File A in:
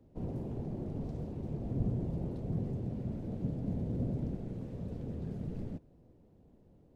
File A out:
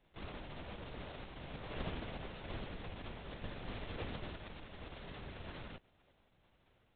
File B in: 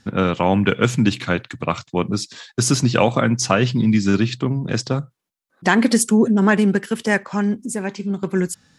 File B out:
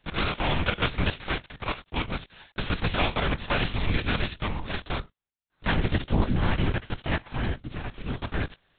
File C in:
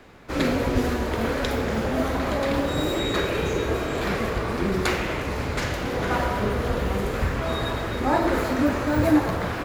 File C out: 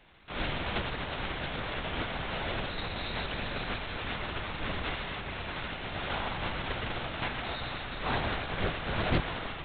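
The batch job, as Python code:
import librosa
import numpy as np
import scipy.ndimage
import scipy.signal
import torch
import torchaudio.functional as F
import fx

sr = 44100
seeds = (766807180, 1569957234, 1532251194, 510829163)

y = fx.envelope_flatten(x, sr, power=0.3)
y = fx.lpc_vocoder(y, sr, seeds[0], excitation='whisper', order=10)
y = fx.doppler_dist(y, sr, depth_ms=0.15)
y = F.gain(torch.from_numpy(y), -8.0).numpy()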